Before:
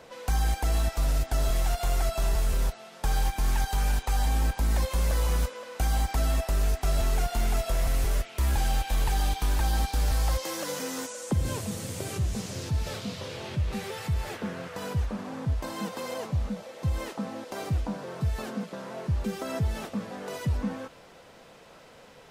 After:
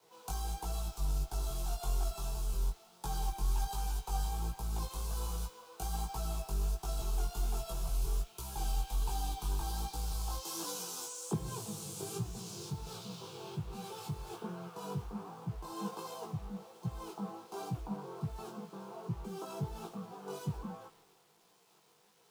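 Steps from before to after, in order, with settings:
in parallel at +0.5 dB: downward compressor 5 to 1, threshold −34 dBFS, peak gain reduction 11.5 dB
on the sum: phaser with its sweep stopped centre 380 Hz, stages 8
bit-depth reduction 8 bits, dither none
chorus effect 1.3 Hz, delay 16.5 ms, depth 4.4 ms
multiband upward and downward expander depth 70%
level −6 dB

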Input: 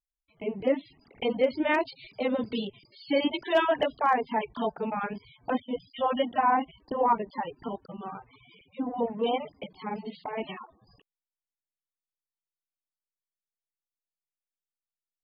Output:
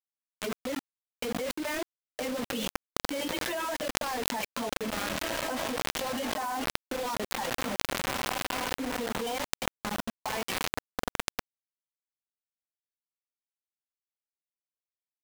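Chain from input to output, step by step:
low-shelf EQ 120 Hz −10 dB
noise reduction from a noise print of the clip's start 16 dB
parametric band 1,600 Hz +2.5 dB 0.53 octaves
feedback delay with all-pass diffusion 1,893 ms, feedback 50%, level −12.5 dB
brickwall limiter −22 dBFS, peak gain reduction 10 dB
rotating-speaker cabinet horn 8 Hz, later 1 Hz, at 0:00.54
bit-depth reduction 6 bits, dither none
envelope flattener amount 100%
level −5.5 dB

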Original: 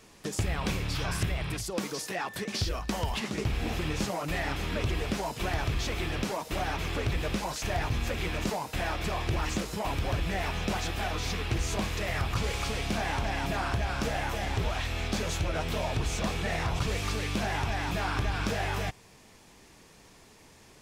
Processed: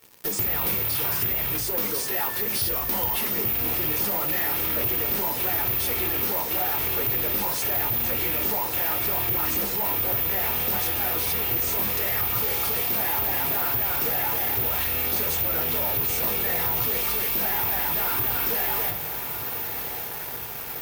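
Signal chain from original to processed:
bad sample-rate conversion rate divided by 3×, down filtered, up zero stuff
high-pass filter 140 Hz 6 dB per octave
low-shelf EQ 180 Hz −3.5 dB
on a send: feedback delay with all-pass diffusion 1,236 ms, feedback 67%, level −15 dB
on the sum: convolution reverb RT60 0.30 s, pre-delay 7 ms, DRR 6 dB
in parallel at −5.5 dB: fuzz pedal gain 46 dB, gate −40 dBFS
on the sum: level −8 dB

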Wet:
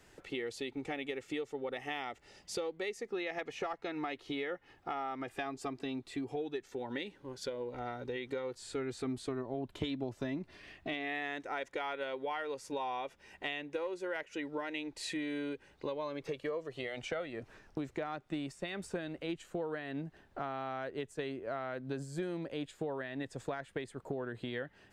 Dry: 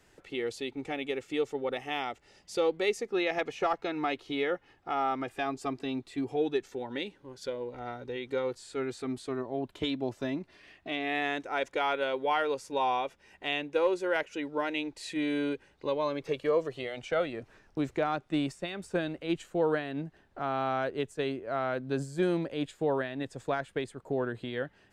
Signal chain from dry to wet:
dynamic equaliser 1,900 Hz, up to +6 dB, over −53 dBFS, Q 6.8
downward compressor 6 to 1, threshold −37 dBFS, peak gain reduction 14.5 dB
0:08.61–0:10.94: low-shelf EQ 180 Hz +7 dB
level +1.5 dB

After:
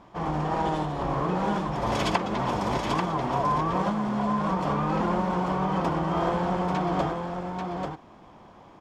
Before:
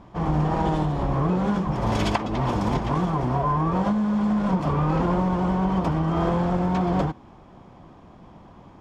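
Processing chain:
low-shelf EQ 250 Hz −11 dB
single-tap delay 839 ms −5 dB

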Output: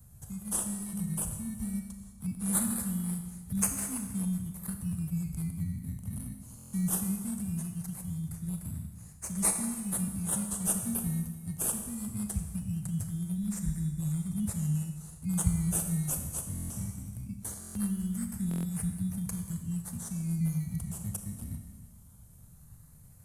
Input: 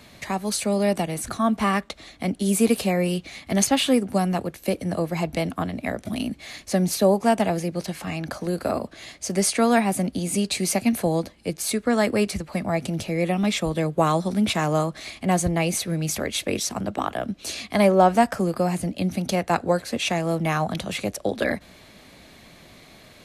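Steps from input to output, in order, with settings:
inverse Chebyshev band-stop filter 620–2,200 Hz, stop band 80 dB
in parallel at −11 dB: sample-and-hold swept by an LFO 17×, swing 60% 0.2 Hz
on the sum: four-comb reverb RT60 1.4 s, combs from 27 ms, DRR 5 dB
buffer that repeats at 0:06.57/0:16.54/0:17.59/0:18.49, samples 1,024, times 6

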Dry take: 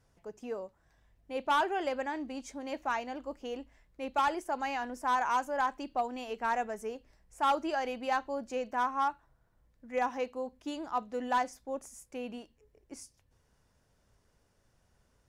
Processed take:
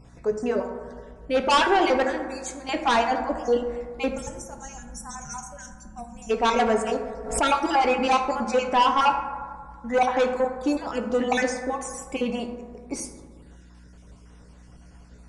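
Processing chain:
time-frequency cells dropped at random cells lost 37%
0:02.03–0:02.69: first-order pre-emphasis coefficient 0.8
0:04.13–0:06.30: gain on a spectral selection 230–5,400 Hz −26 dB
in parallel at −7 dB: hard clipping −31 dBFS, distortion −9 dB
on the sum: mains hum 60 Hz, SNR 25 dB
sine wavefolder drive 9 dB, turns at −16.5 dBFS
on a send at −3.5 dB: convolution reverb RT60 1.8 s, pre-delay 3 ms
on the sum: downsampling to 22,050 Hz
0:06.58–0:07.49: background raised ahead of every attack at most 88 dB per second

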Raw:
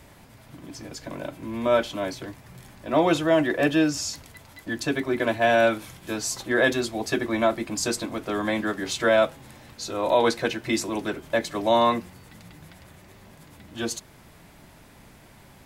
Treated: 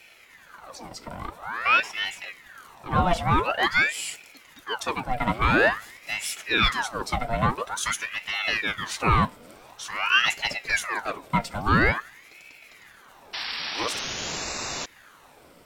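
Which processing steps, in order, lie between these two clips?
EQ curve with evenly spaced ripples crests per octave 1.3, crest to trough 8 dB
sound drawn into the spectrogram noise, 0:13.33–0:14.86, 1,100–5,300 Hz −29 dBFS
ring modulator whose carrier an LFO sweeps 1,400 Hz, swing 75%, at 0.48 Hz

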